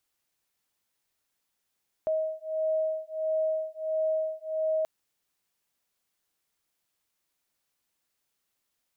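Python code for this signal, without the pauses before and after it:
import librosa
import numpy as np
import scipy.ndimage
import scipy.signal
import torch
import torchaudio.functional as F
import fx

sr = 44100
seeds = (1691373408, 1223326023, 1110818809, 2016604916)

y = fx.two_tone_beats(sr, length_s=2.78, hz=631.0, beat_hz=1.5, level_db=-29.5)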